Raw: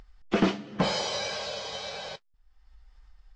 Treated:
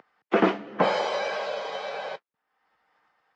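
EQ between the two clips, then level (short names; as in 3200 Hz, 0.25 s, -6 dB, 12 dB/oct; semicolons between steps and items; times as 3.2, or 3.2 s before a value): HPF 140 Hz 24 dB/oct; three-band isolator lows -14 dB, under 300 Hz, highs -18 dB, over 2400 Hz; +7.0 dB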